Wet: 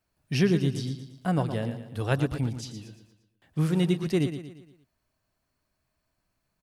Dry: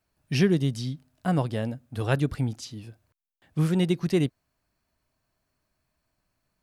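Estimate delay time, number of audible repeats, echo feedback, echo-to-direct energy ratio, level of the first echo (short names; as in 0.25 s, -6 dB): 0.116 s, 4, 45%, -9.0 dB, -10.0 dB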